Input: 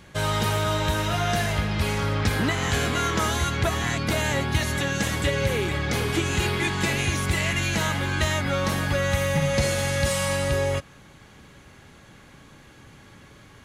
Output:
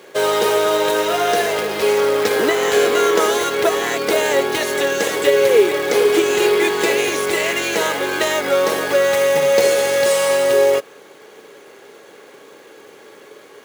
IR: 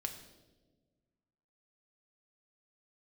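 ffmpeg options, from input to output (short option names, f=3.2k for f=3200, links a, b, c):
-af "acrusher=bits=3:mode=log:mix=0:aa=0.000001,highpass=f=430:t=q:w=4.9,volume=5dB"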